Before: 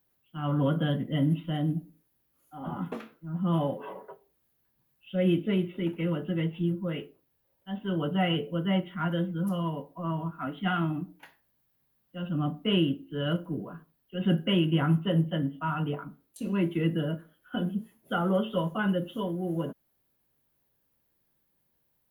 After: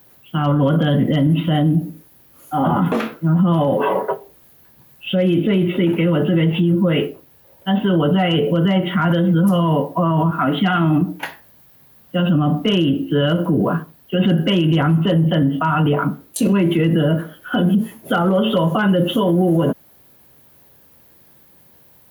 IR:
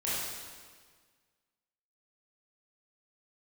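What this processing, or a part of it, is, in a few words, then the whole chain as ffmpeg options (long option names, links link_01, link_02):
mastering chain: -af "highpass=frequency=52:width=0.5412,highpass=frequency=52:width=1.3066,equalizer=frequency=640:width_type=o:width=1.3:gain=2,acompressor=threshold=-28dB:ratio=2.5,asoftclip=type=hard:threshold=-21.5dB,alimiter=level_in=31.5dB:limit=-1dB:release=50:level=0:latency=1,volume=-8dB"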